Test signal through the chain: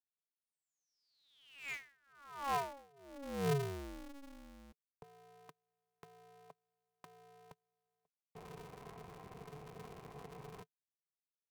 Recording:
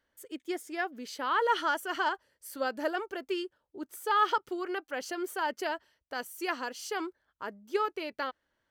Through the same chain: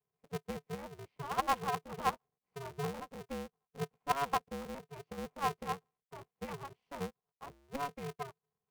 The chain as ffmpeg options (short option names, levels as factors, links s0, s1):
-filter_complex "[0:a]equalizer=f=920:t=o:w=0.32:g=5,acrossover=split=170|460|2500[s0][s1][s2][s3];[s3]acontrast=36[s4];[s0][s1][s2][s4]amix=inputs=4:normalize=0,asplit=3[s5][s6][s7];[s5]bandpass=f=300:t=q:w=8,volume=1[s8];[s6]bandpass=f=870:t=q:w=8,volume=0.501[s9];[s7]bandpass=f=2240:t=q:w=8,volume=0.355[s10];[s8][s9][s10]amix=inputs=3:normalize=0,adynamicsmooth=sensitivity=7.5:basefreq=860,aeval=exprs='val(0)*sgn(sin(2*PI*140*n/s))':c=same,volume=1.5"